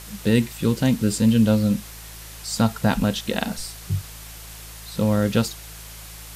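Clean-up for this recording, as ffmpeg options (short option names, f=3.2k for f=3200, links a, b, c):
-af "bandreject=f=54.4:t=h:w=4,bandreject=f=108.8:t=h:w=4,bandreject=f=163.2:t=h:w=4,afftdn=nr=27:nf=-39"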